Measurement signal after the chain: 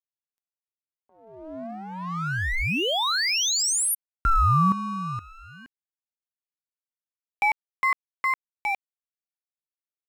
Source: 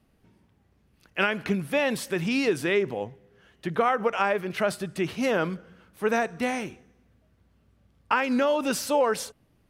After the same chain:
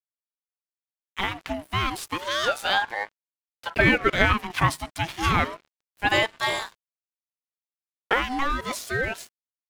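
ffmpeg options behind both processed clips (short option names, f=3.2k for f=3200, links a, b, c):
-filter_complex "[0:a]agate=range=-7dB:threshold=-59dB:ratio=16:detection=peak,acrossover=split=380[a][b];[a]bandpass=f=210:t=q:w=1.7:csg=0[c];[b]dynaudnorm=f=310:g=13:m=9.5dB[d];[c][d]amix=inputs=2:normalize=0,aeval=exprs='sgn(val(0))*max(abs(val(0))-0.0112,0)':c=same,aeval=exprs='val(0)*sin(2*PI*910*n/s+910*0.5/0.31*sin(2*PI*0.31*n/s))':c=same"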